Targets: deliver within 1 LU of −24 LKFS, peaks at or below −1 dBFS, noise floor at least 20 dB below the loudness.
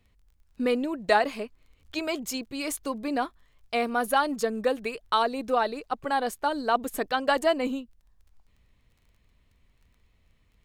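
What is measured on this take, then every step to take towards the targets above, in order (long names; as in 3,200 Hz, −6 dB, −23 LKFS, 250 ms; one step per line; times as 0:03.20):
crackle rate 18 per second; integrated loudness −28.0 LKFS; sample peak −9.0 dBFS; target loudness −24.0 LKFS
→ click removal
level +4 dB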